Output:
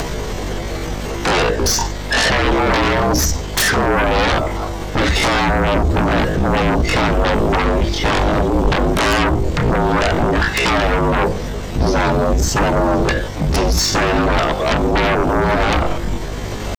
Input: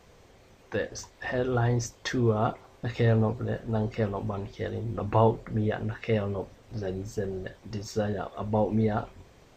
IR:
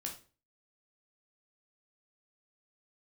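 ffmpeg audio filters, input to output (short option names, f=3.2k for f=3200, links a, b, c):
-filter_complex "[0:a]bandreject=f=2.5k:w=21,asplit=2[a][b];[b]highshelf=f=3.7k:g=-6.5[c];[1:a]atrim=start_sample=2205[d];[c][d]afir=irnorm=-1:irlink=0,volume=-17.5dB[e];[a][e]amix=inputs=2:normalize=0,acompressor=mode=upward:threshold=-46dB:ratio=2.5,atempo=0.57,aeval=exprs='0.376*(cos(1*acos(clip(val(0)/0.376,-1,1)))-cos(1*PI/2))+0.0944*(cos(5*acos(clip(val(0)/0.376,-1,1)))-cos(5*PI/2))+0.0473*(cos(7*acos(clip(val(0)/0.376,-1,1)))-cos(7*PI/2))':c=same,acrossover=split=110|6000[f][g][h];[f]acompressor=threshold=-29dB:ratio=4[i];[g]acompressor=threshold=-30dB:ratio=4[j];[h]acompressor=threshold=-51dB:ratio=4[k];[i][j][k]amix=inputs=3:normalize=0,aeval=exprs='0.2*sin(PI/2*10*val(0)/0.2)':c=same,afreqshift=-45,aeval=exprs='val(0)+0.0398*(sin(2*PI*50*n/s)+sin(2*PI*2*50*n/s)/2+sin(2*PI*3*50*n/s)/3+sin(2*PI*4*50*n/s)/4+sin(2*PI*5*50*n/s)/5)':c=same,volume=2dB"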